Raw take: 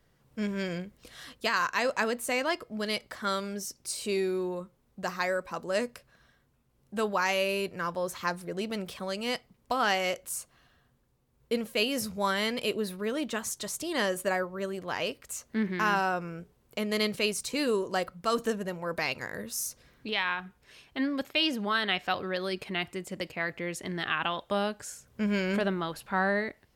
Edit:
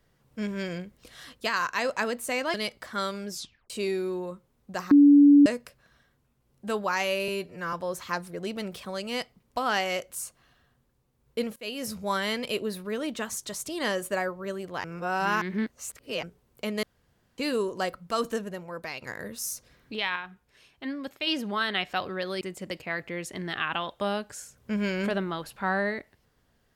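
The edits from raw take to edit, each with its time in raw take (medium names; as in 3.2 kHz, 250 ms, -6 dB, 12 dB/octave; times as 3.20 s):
2.54–2.83 s: delete
3.59 s: tape stop 0.40 s
5.20–5.75 s: bleep 287 Hz -11.5 dBFS
7.57–7.87 s: stretch 1.5×
11.70–12.09 s: fade in linear, from -19 dB
14.98–16.37 s: reverse
16.97–17.52 s: room tone
18.35–19.16 s: fade out, to -8 dB
20.30–21.41 s: gain -4.5 dB
22.55–22.91 s: delete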